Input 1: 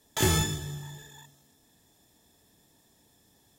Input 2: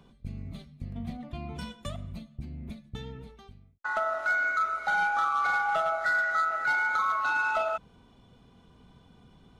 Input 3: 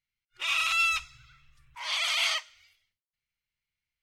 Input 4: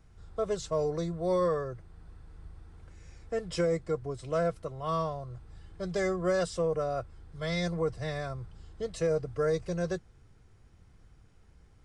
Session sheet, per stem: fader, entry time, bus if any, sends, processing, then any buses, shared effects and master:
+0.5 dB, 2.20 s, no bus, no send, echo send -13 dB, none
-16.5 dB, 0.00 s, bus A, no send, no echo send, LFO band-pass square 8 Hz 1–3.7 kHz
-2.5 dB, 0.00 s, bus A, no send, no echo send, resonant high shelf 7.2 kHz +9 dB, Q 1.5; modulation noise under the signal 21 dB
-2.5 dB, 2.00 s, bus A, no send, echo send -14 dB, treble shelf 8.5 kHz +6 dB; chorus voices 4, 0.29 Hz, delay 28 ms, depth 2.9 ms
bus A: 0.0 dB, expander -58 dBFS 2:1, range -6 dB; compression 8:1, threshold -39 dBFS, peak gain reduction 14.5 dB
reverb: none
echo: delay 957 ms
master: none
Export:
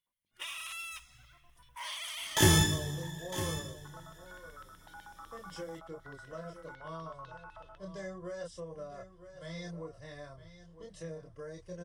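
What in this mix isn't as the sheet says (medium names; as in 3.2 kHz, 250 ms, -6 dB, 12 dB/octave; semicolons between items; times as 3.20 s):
stem 4 -2.5 dB -> -9.5 dB; master: extra rippled EQ curve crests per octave 1.2, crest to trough 6 dB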